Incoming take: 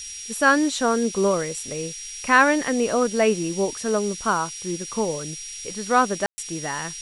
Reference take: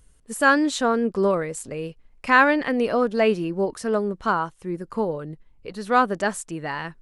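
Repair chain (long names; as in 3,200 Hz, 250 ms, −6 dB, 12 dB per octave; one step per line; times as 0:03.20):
notch filter 5,700 Hz, Q 30
ambience match 0:06.26–0:06.38
noise reduction from a noise print 17 dB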